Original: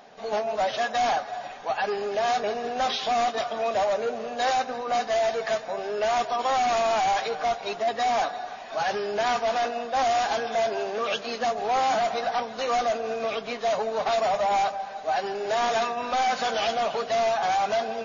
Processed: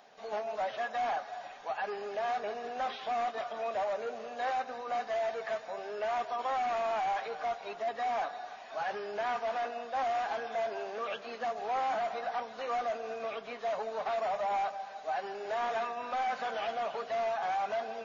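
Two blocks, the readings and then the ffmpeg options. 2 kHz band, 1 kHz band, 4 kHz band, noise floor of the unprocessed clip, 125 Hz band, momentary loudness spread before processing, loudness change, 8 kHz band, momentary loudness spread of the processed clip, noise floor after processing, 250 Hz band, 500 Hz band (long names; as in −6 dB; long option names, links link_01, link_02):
−8.5 dB, −8.0 dB, −14.0 dB, −39 dBFS, below −10 dB, 5 LU, −8.5 dB, can't be measured, 6 LU, −47 dBFS, −12.5 dB, −9.0 dB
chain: -filter_complex "[0:a]acrossover=split=2600[link_01][link_02];[link_02]acompressor=threshold=-50dB:ratio=4:attack=1:release=60[link_03];[link_01][link_03]amix=inputs=2:normalize=0,lowshelf=frequency=370:gain=-8.5,volume=-6.5dB"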